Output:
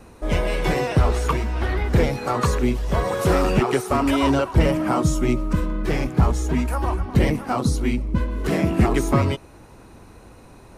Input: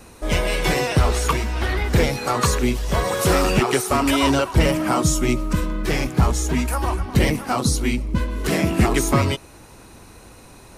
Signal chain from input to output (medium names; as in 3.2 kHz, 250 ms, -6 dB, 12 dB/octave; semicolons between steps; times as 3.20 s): treble shelf 2.3 kHz -10 dB